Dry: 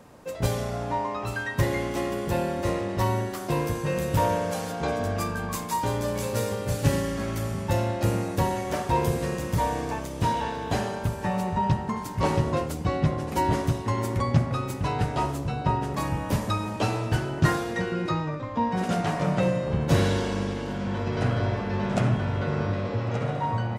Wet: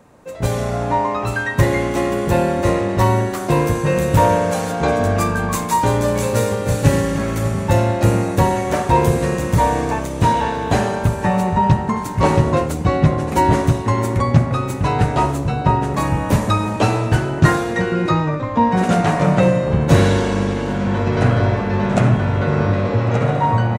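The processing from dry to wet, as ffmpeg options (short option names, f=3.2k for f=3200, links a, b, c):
-filter_complex "[0:a]asplit=2[a][b];[b]afade=t=in:st=6.34:d=0.01,afade=t=out:st=6.88:d=0.01,aecho=0:1:300|600|900|1200|1500|1800|2100:0.223872|0.134323|0.080594|0.0483564|0.0290138|0.0174083|0.010445[c];[a][c]amix=inputs=2:normalize=0,equalizer=f=3.15k:t=o:w=0.33:g=-4,equalizer=f=5k:t=o:w=0.33:g=-6,equalizer=f=12.5k:t=o:w=0.33:g=-7,dynaudnorm=f=140:g=7:m=10dB,volume=1dB"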